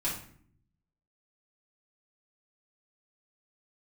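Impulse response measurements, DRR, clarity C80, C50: -8.5 dB, 9.5 dB, 5.0 dB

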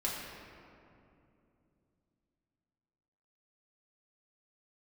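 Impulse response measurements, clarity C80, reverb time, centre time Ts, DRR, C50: 2.0 dB, 2.7 s, 0.109 s, -6.0 dB, 0.5 dB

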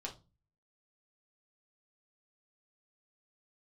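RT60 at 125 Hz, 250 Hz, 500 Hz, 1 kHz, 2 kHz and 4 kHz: 0.65, 0.50, 0.30, 0.25, 0.20, 0.25 s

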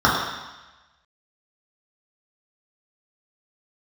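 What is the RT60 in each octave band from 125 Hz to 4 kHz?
1.0, 0.95, 1.0, 1.2, 1.2, 1.2 s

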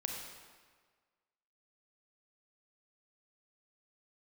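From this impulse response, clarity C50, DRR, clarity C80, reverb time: 2.0 dB, 1.0 dB, 3.5 dB, 1.6 s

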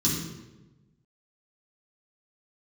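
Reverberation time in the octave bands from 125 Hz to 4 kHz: 1.5, 1.3, 1.2, 0.95, 0.85, 0.75 s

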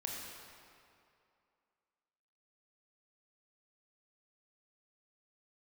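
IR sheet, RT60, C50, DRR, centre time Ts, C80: 2.5 s, 0.0 dB, -2.0 dB, 0.117 s, 1.0 dB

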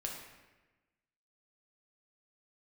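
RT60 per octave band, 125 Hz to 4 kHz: 1.3, 1.4, 1.2, 1.1, 1.2, 0.85 s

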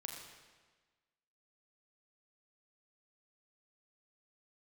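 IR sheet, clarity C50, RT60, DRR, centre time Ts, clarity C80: 3.5 dB, 1.4 s, 1.0 dB, 57 ms, 4.0 dB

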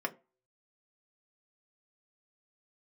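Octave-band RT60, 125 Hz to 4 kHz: 0.25, 0.30, 0.35, 0.30, 0.25, 0.15 s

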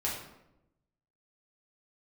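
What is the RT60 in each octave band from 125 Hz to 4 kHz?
1.3, 1.1, 0.95, 0.80, 0.70, 0.55 s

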